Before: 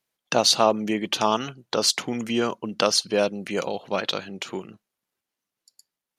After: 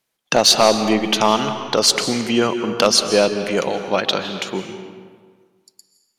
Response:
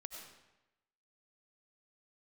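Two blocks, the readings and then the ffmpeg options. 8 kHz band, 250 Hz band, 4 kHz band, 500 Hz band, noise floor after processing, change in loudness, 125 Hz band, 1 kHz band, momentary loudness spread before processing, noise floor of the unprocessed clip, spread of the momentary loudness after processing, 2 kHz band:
+6.5 dB, +7.0 dB, +6.5 dB, +6.5 dB, -72 dBFS, +6.5 dB, +6.5 dB, +6.0 dB, 11 LU, under -85 dBFS, 12 LU, +7.0 dB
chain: -filter_complex "[0:a]volume=3.55,asoftclip=hard,volume=0.282,asplit=2[s0][s1];[1:a]atrim=start_sample=2205,asetrate=26460,aresample=44100[s2];[s1][s2]afir=irnorm=-1:irlink=0,volume=1.12[s3];[s0][s3]amix=inputs=2:normalize=0,volume=1.19"

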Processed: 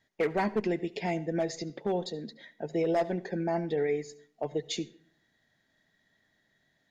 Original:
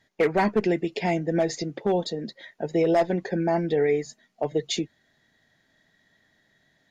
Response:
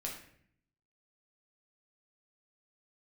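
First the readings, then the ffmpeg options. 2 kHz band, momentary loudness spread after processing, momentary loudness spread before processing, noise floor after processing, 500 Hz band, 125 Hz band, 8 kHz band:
-6.5 dB, 11 LU, 11 LU, -74 dBFS, -6.5 dB, -6.5 dB, no reading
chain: -filter_complex "[0:a]asplit=2[s0][s1];[1:a]atrim=start_sample=2205,asetrate=66150,aresample=44100,adelay=72[s2];[s1][s2]afir=irnorm=-1:irlink=0,volume=0.178[s3];[s0][s3]amix=inputs=2:normalize=0,volume=0.473"

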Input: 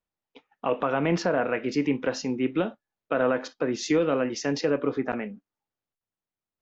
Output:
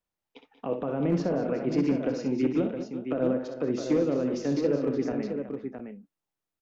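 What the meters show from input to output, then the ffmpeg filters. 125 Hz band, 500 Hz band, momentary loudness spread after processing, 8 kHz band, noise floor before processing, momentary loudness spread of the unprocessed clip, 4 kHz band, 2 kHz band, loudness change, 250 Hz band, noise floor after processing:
+1.5 dB, -2.0 dB, 10 LU, no reading, under -85 dBFS, 6 LU, -9.5 dB, -11.5 dB, -1.5 dB, +1.0 dB, under -85 dBFS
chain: -filter_complex "[0:a]acrossover=split=550[s0][s1];[s1]acompressor=threshold=0.00631:ratio=6[s2];[s0][s2]amix=inputs=2:normalize=0,asoftclip=type=hard:threshold=0.133,aecho=1:1:63|184|195|213|370|664:0.398|0.178|0.1|0.188|0.211|0.447"

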